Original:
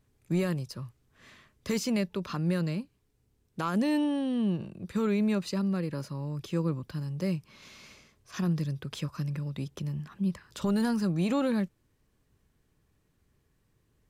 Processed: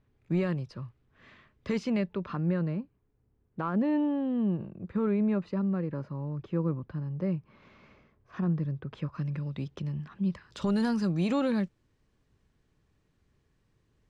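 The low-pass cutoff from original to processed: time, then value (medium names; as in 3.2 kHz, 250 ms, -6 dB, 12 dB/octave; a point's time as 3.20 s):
1.80 s 2.9 kHz
2.71 s 1.5 kHz
8.90 s 1.5 kHz
9.42 s 3.7 kHz
10.14 s 3.7 kHz
10.78 s 6.3 kHz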